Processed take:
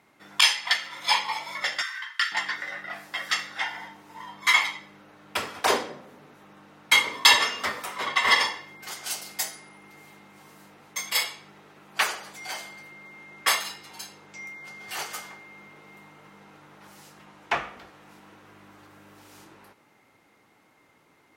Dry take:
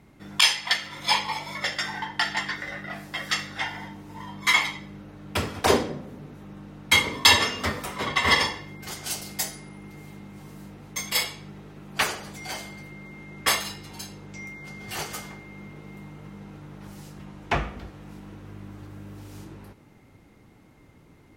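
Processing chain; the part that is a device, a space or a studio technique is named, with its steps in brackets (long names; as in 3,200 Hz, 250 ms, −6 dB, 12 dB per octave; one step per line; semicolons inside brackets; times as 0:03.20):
filter by subtraction (in parallel: low-pass filter 1,100 Hz 12 dB per octave + polarity inversion)
0:01.82–0:02.32: on the sum: Butterworth high-pass 1,100 Hz 72 dB per octave
level −1 dB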